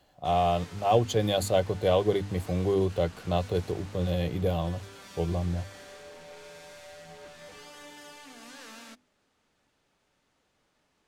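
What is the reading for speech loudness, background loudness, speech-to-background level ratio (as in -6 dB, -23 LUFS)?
-28.0 LUFS, -47.5 LUFS, 19.5 dB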